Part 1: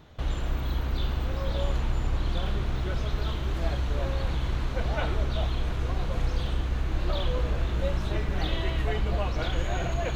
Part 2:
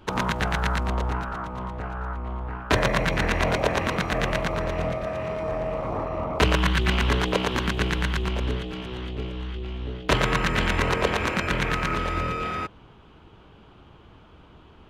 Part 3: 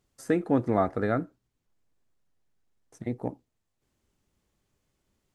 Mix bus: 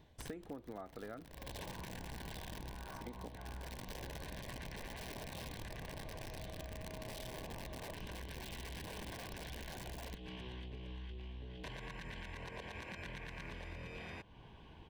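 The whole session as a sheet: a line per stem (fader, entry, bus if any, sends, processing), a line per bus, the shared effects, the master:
-9.0 dB, 0.00 s, bus A, no send, integer overflow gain 22 dB; auto duck -12 dB, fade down 0.30 s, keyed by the third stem
-4.5 dB, 1.55 s, bus A, no send, peaking EQ 360 Hz -4 dB 1.5 oct; compression 2:1, threshold -41 dBFS, peak gain reduction 14 dB
-6.5 dB, 0.00 s, no bus, no send, high-pass 230 Hz 6 dB/octave
bus A: 0.0 dB, Butterworth band-stop 1.3 kHz, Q 3.8; peak limiter -30.5 dBFS, peak gain reduction 10 dB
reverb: none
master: band-stop 6.8 kHz, Q 12; compression 12:1, threshold -43 dBFS, peak gain reduction 17.5 dB

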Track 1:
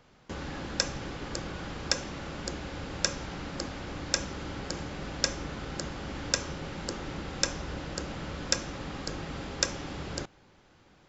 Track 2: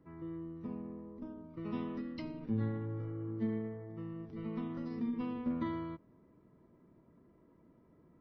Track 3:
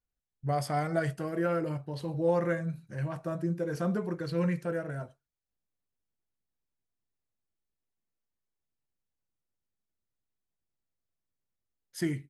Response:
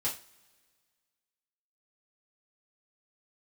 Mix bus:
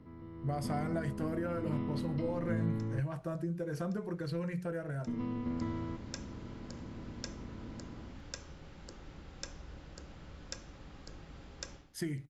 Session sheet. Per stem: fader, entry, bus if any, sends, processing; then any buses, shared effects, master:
-16.5 dB, 2.00 s, bus A, no send, auto duck -17 dB, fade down 0.20 s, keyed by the third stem
-14.0 dB, 0.00 s, muted 3.00–5.07 s, no bus, no send, spectral levelling over time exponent 0.4; treble shelf 3.8 kHz -6 dB; level rider gain up to 8.5 dB
-3.0 dB, 0.00 s, bus A, no send, hum notches 60/120/180 Hz
bus A: 0.0 dB, compression, threshold -34 dBFS, peak gain reduction 9 dB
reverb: none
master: bass shelf 86 Hz +11.5 dB

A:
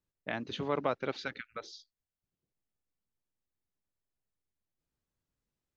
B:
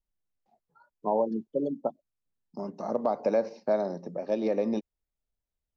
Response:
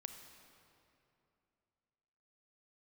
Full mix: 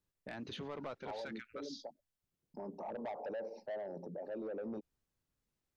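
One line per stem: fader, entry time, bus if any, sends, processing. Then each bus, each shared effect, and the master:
+1.0 dB, 0.00 s, no send, none
-3.0 dB, 0.00 s, no send, resonances exaggerated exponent 1.5; peaking EQ 860 Hz +9.5 dB 0.39 oct; expander -54 dBFS; auto duck -11 dB, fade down 1.95 s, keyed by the first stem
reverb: none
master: saturation -26.5 dBFS, distortion -11 dB; peak limiter -37 dBFS, peak gain reduction 10.5 dB

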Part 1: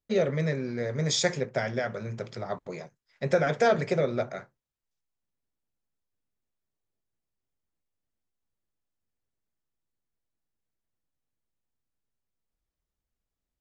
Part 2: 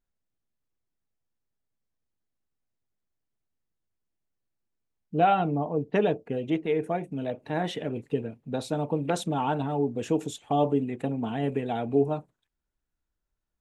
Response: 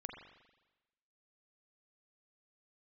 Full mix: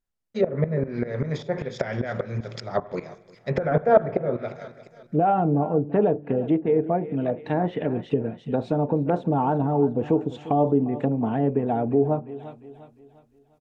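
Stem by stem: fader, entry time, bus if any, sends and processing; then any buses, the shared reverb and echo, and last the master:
+1.0 dB, 0.25 s, send -7 dB, echo send -19.5 dB, sawtooth tremolo in dB swelling 5.1 Hz, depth 19 dB; auto duck -9 dB, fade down 1.20 s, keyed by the second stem
-2.5 dB, 0.00 s, send -23.5 dB, echo send -16 dB, peak limiter -17 dBFS, peak gain reduction 7 dB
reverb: on, RT60 1.1 s, pre-delay 40 ms
echo: feedback delay 351 ms, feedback 41%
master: level rider gain up to 8.5 dB; low-pass that closes with the level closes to 1 kHz, closed at -19.5 dBFS

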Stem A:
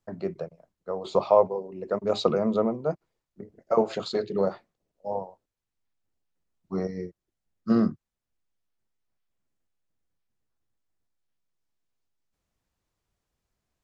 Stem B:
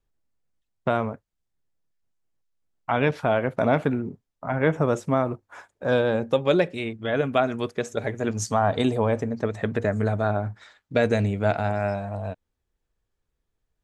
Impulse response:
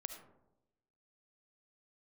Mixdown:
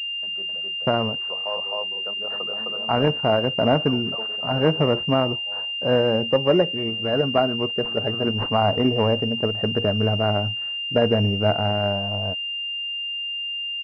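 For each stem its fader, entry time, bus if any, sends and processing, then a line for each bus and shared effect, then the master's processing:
-7.0 dB, 0.15 s, no send, echo send -3.5 dB, de-esser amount 90%; tilt shelf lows -10 dB, about 810 Hz; auto duck -6 dB, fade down 0.80 s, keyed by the second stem
+2.5 dB, 0.00 s, no send, no echo send, none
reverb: none
echo: delay 260 ms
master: class-D stage that switches slowly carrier 2.8 kHz

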